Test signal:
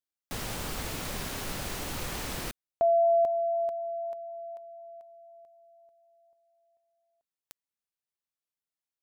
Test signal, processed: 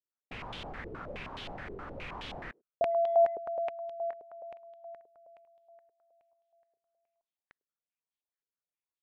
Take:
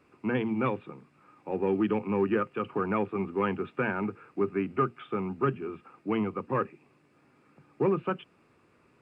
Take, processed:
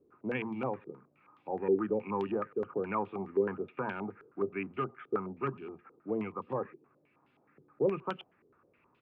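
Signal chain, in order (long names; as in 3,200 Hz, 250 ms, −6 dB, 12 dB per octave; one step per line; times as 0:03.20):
far-end echo of a speakerphone 100 ms, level −25 dB
low-pass on a step sequencer 9.5 Hz 420–3,300 Hz
level −8.5 dB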